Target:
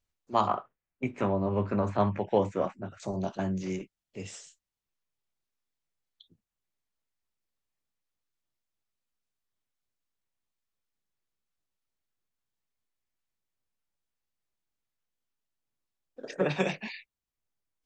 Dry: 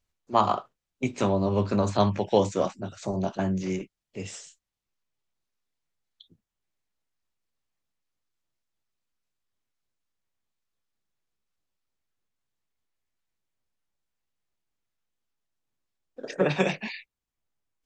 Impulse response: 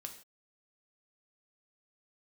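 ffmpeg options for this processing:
-filter_complex "[0:a]asettb=1/sr,asplit=3[a][b][c];[a]atrim=end=0.474[d];[b]atrim=start=0.47:end=3,asetpts=PTS-STARTPTS,afade=t=in:d=0.004:c=qsin,afade=t=out:st=2.526:d=0.004:c=qsin,highshelf=f=3k:t=q:w=1.5:g=-12[e];[c]atrim=start=2.996[f];[d][e]acrossfade=d=0.004:c1=hsin:c2=qsin[g];[g][f]acrossfade=d=0.004:c1=qsin:c2=hsin,volume=-4dB"

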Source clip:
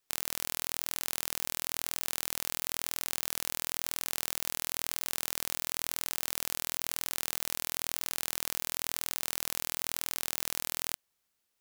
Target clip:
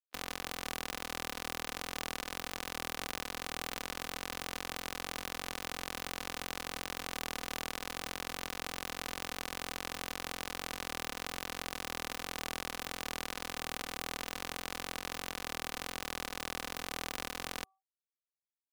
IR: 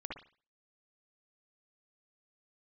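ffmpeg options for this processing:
-filter_complex "[0:a]highshelf=f=2.4k:g=-7,aecho=1:1:4:0.4,bandreject=f=384.4:t=h:w=4,bandreject=f=768.8:t=h:w=4,bandreject=f=1.1532k:t=h:w=4,acrossover=split=140|5300[a][b][c];[c]asoftclip=type=tanh:threshold=-29.5dB[d];[a][b][d]amix=inputs=3:normalize=0,afftfilt=real='re*gte(hypot(re,im),0.000708)':imag='im*gte(hypot(re,im),0.000708)':win_size=1024:overlap=0.75,atempo=0.62,afftdn=nr=28:nf=-65,volume=3dB"

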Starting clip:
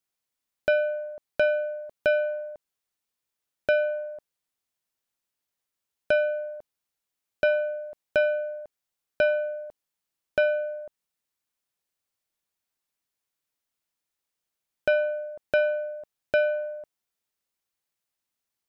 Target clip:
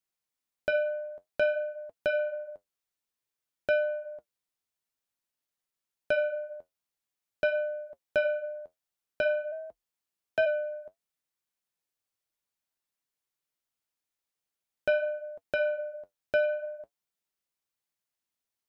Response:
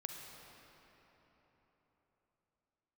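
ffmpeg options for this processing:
-filter_complex "[0:a]flanger=delay=5.2:depth=6.7:regen=-57:speed=0.52:shape=sinusoidal,asplit=3[a][b][c];[a]afade=t=out:st=9.51:d=0.02[d];[b]afreqshift=37,afade=t=in:st=9.51:d=0.02,afade=t=out:st=10.45:d=0.02[e];[c]afade=t=in:st=10.45:d=0.02[f];[d][e][f]amix=inputs=3:normalize=0"

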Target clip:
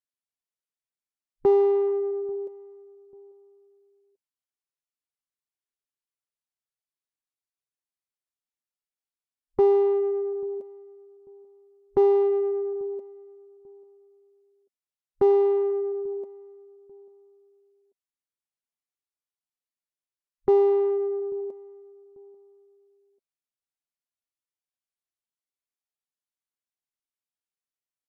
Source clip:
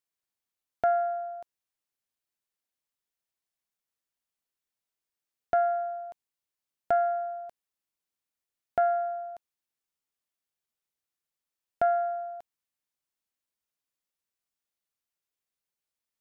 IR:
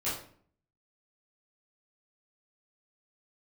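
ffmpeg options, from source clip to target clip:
-filter_complex "[0:a]afwtdn=0.00891,aecho=1:1:4.5:0.36,asplit=2[a][b];[b]asoftclip=type=tanh:threshold=-32dB,volume=-8dB[c];[a][c]amix=inputs=2:normalize=0,asplit=2[d][e];[e]adelay=485,lowpass=f=1.2k:p=1,volume=-21.5dB,asplit=2[f][g];[g]adelay=485,lowpass=f=1.2k:p=1,volume=0.34[h];[d][f][h]amix=inputs=3:normalize=0,asetrate=25442,aresample=44100,volume=2dB"

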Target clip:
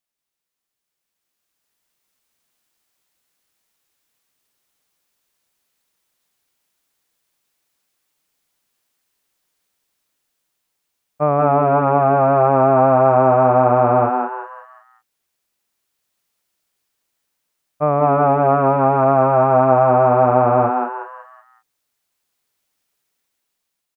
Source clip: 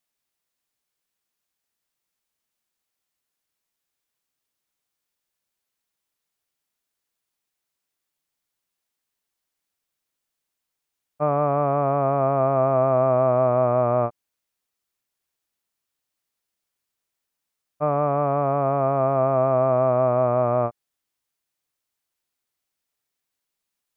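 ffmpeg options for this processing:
-filter_complex "[0:a]dynaudnorm=f=580:g=5:m=11.5dB,asplit=2[a][b];[b]asplit=5[c][d][e][f][g];[c]adelay=184,afreqshift=130,volume=-3.5dB[h];[d]adelay=368,afreqshift=260,volume=-12.1dB[i];[e]adelay=552,afreqshift=390,volume=-20.8dB[j];[f]adelay=736,afreqshift=520,volume=-29.4dB[k];[g]adelay=920,afreqshift=650,volume=-38dB[l];[h][i][j][k][l]amix=inputs=5:normalize=0[m];[a][m]amix=inputs=2:normalize=0,volume=-3dB"

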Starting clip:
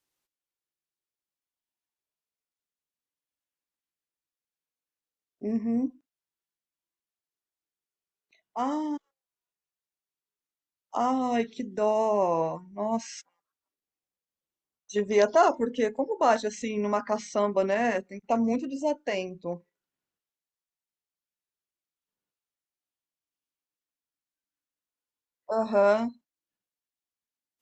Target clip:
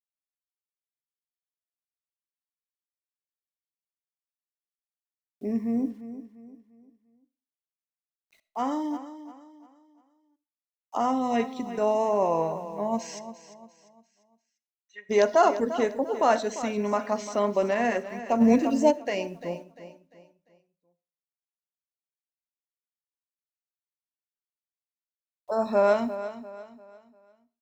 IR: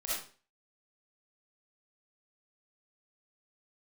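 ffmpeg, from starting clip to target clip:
-filter_complex "[0:a]acrusher=bits=10:mix=0:aa=0.000001,asplit=3[a][b][c];[a]afade=t=out:st=13.18:d=0.02[d];[b]bandpass=f=2k:t=q:w=5.6:csg=0,afade=t=in:st=13.18:d=0.02,afade=t=out:st=15.09:d=0.02[e];[c]afade=t=in:st=15.09:d=0.02[f];[d][e][f]amix=inputs=3:normalize=0,aecho=1:1:347|694|1041|1388:0.224|0.0828|0.0306|0.0113,asplit=2[g][h];[1:a]atrim=start_sample=2205[i];[h][i]afir=irnorm=-1:irlink=0,volume=-20.5dB[j];[g][j]amix=inputs=2:normalize=0,asplit=3[k][l][m];[k]afade=t=out:st=18.4:d=0.02[n];[l]acontrast=87,afade=t=in:st=18.4:d=0.02,afade=t=out:st=18.9:d=0.02[o];[m]afade=t=in:st=18.9:d=0.02[p];[n][o][p]amix=inputs=3:normalize=0"

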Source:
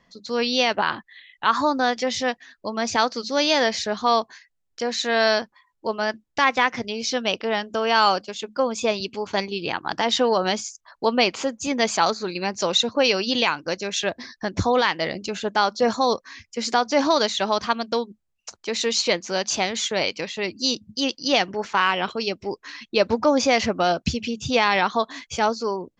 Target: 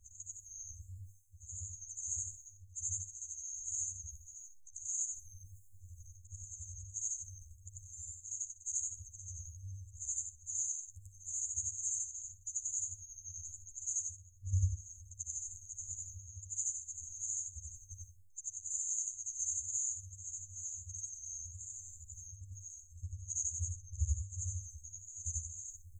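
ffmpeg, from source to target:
-filter_complex "[0:a]afftfilt=real='re':imag='-im':win_size=8192:overlap=0.75,afftfilt=real='re*(1-between(b*sr/4096,100,6300))':imag='im*(1-between(b*sr/4096,100,6300))':win_size=4096:overlap=0.75,asplit=2[a][b];[b]acompressor=threshold=-53dB:ratio=16,volume=-1.5dB[c];[a][c]amix=inputs=2:normalize=0,alimiter=level_in=7dB:limit=-24dB:level=0:latency=1:release=393,volume=-7dB,areverse,acompressor=mode=upward:threshold=-48dB:ratio=2.5,areverse,aecho=1:1:61|122:0.2|0.0339,flanger=delay=7.2:depth=6.6:regen=7:speed=1.5:shape=triangular,volume=9dB"

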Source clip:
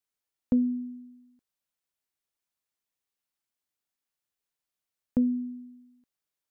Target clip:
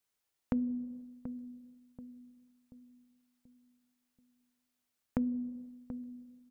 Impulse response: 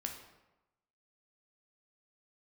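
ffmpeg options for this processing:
-filter_complex "[0:a]asplit=2[a][b];[1:a]atrim=start_sample=2205[c];[b][c]afir=irnorm=-1:irlink=0,volume=-1.5dB[d];[a][d]amix=inputs=2:normalize=0,acompressor=threshold=-34dB:ratio=3,asplit=2[e][f];[f]adelay=733,lowpass=f=850:p=1,volume=-10.5dB,asplit=2[g][h];[h]adelay=733,lowpass=f=850:p=1,volume=0.45,asplit=2[i][j];[j]adelay=733,lowpass=f=850:p=1,volume=0.45,asplit=2[k][l];[l]adelay=733,lowpass=f=850:p=1,volume=0.45,asplit=2[m][n];[n]adelay=733,lowpass=f=850:p=1,volume=0.45[o];[e][g][i][k][m][o]amix=inputs=6:normalize=0"

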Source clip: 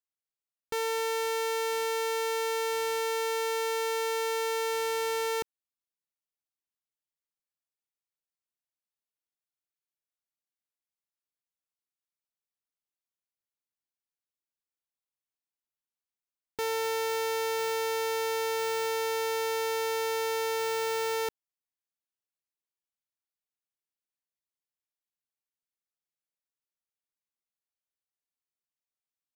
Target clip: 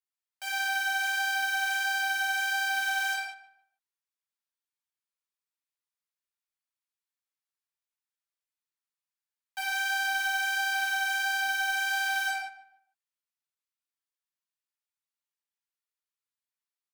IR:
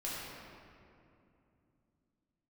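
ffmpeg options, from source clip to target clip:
-filter_complex "[0:a]highpass=f=510:w=0.5412,highpass=f=510:w=1.3066,aphaser=in_gain=1:out_gain=1:delay=3.9:decay=0.55:speed=0.86:type=triangular,asplit=2[a][b];[b]adelay=260,lowpass=f=1.1k:p=1,volume=-14dB,asplit=2[c][d];[d]adelay=260,lowpass=f=1.1k:p=1,volume=0.31,asplit=2[e][f];[f]adelay=260,lowpass=f=1.1k:p=1,volume=0.31[g];[a][c][e][g]amix=inputs=4:normalize=0[h];[1:a]atrim=start_sample=2205,afade=t=out:st=0.42:d=0.01,atrim=end_sample=18963[i];[h][i]afir=irnorm=-1:irlink=0,asetrate=76440,aresample=44100,volume=-1.5dB"

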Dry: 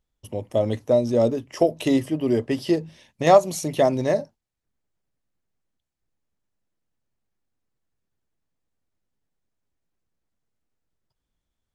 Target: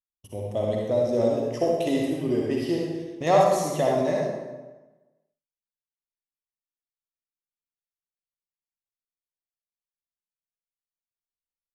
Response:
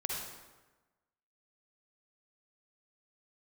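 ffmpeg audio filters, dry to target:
-filter_complex "[0:a]agate=range=-27dB:threshold=-48dB:ratio=16:detection=peak[a];[1:a]atrim=start_sample=2205[b];[a][b]afir=irnorm=-1:irlink=0,volume=-5.5dB"

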